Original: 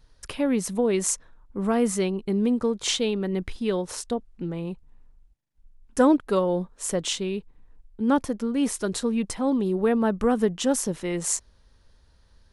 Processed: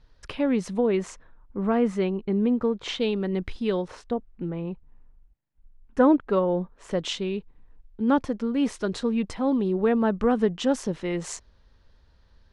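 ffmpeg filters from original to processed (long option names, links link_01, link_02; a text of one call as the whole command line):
ffmpeg -i in.wav -af "asetnsamples=nb_out_samples=441:pad=0,asendcmd='0.87 lowpass f 2600;3 lowpass f 5600;3.88 lowpass f 2400;6.91 lowpass f 4300',lowpass=4200" out.wav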